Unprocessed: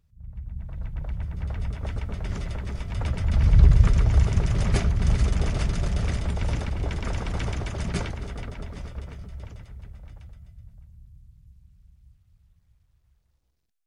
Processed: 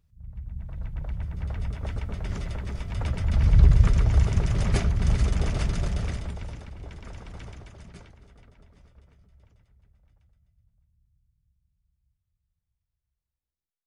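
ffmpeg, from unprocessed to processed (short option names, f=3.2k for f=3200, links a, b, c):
-af "volume=-1dB,afade=t=out:st=5.81:d=0.73:silence=0.266073,afade=t=out:st=7.41:d=0.57:silence=0.473151"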